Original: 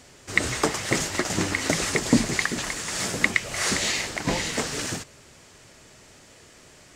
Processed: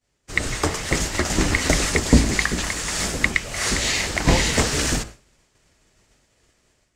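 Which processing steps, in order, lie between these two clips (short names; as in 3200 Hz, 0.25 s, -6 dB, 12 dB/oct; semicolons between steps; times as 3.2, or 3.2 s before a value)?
octaver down 2 oct, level +3 dB; de-hum 55.56 Hz, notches 30; expander -36 dBFS; AGC gain up to 10 dB; gain -1 dB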